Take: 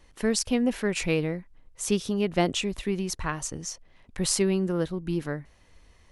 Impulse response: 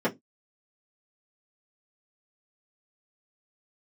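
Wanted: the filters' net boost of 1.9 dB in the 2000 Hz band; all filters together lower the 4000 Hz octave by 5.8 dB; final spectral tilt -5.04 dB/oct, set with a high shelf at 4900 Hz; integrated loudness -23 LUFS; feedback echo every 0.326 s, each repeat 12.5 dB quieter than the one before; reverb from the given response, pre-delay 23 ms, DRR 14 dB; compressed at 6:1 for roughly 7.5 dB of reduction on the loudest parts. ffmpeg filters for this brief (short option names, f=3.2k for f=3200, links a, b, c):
-filter_complex "[0:a]equalizer=f=2k:t=o:g=5.5,equalizer=f=4k:t=o:g=-7,highshelf=f=4.9k:g=-6.5,acompressor=threshold=-27dB:ratio=6,aecho=1:1:326|652|978:0.237|0.0569|0.0137,asplit=2[a][b];[1:a]atrim=start_sample=2205,adelay=23[c];[b][c]afir=irnorm=-1:irlink=0,volume=-26dB[d];[a][d]amix=inputs=2:normalize=0,volume=9.5dB"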